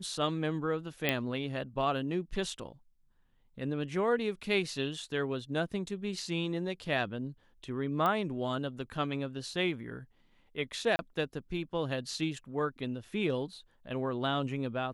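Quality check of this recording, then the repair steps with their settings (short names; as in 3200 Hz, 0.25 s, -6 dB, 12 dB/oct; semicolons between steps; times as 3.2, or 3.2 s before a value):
1.09 pop -13 dBFS
8.06 pop -18 dBFS
10.96–10.99 gap 30 ms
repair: de-click; interpolate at 10.96, 30 ms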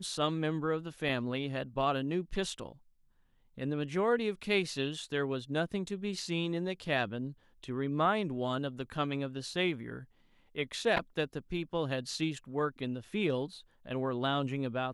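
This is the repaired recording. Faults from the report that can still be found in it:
none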